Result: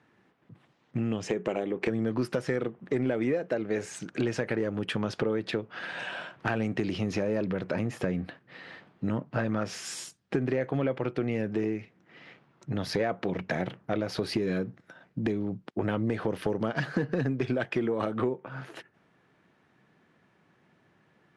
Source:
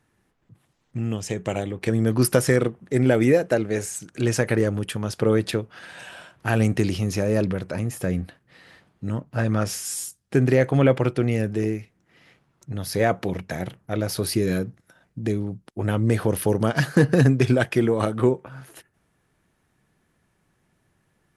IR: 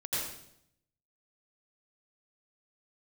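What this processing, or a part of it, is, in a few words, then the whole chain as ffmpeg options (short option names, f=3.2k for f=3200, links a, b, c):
AM radio: -filter_complex "[0:a]asettb=1/sr,asplit=3[a][b][c];[a]atrim=end=1.264[d];[b]atrim=start=1.26:end=1.89,asetpts=PTS-STARTPTS,afade=t=in:d=0.004:c=qsin,afade=t=out:st=0.626:d=0.004:c=qsin,equalizer=f=100:t=o:w=0.67:g=-10,equalizer=f=400:t=o:w=0.67:g=5,equalizer=f=4k:t=o:w=0.67:g=-5[e];[c]atrim=start=1.886[f];[d][e]acrossfade=d=0.004:c1=hsin:c2=qsin[g];[g][f]acrossfade=d=0.004:c1=qsin:c2=hsin,highpass=160,lowpass=3.6k,acompressor=threshold=-30dB:ratio=6,asoftclip=type=tanh:threshold=-20dB,volume=5dB"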